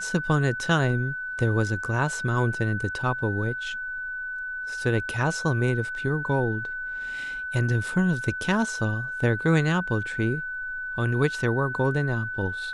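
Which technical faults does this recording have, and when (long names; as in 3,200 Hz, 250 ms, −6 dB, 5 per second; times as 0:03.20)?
whistle 1,500 Hz −30 dBFS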